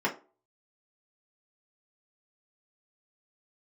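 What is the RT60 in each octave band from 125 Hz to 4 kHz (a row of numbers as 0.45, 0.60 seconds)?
0.25, 0.35, 0.40, 0.35, 0.25, 0.20 seconds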